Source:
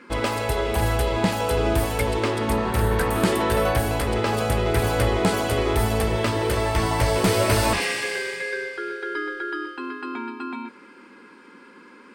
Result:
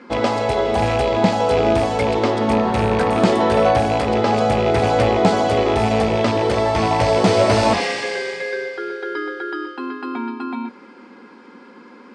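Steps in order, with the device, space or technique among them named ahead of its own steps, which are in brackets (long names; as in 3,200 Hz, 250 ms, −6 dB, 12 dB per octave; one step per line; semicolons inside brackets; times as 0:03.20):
car door speaker with a rattle (loose part that buzzes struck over −23 dBFS, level −18 dBFS; loudspeaker in its box 94–6,800 Hz, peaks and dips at 230 Hz +6 dB, 520 Hz +4 dB, 740 Hz +9 dB, 1,600 Hz −3 dB, 2,600 Hz −4 dB)
level +3 dB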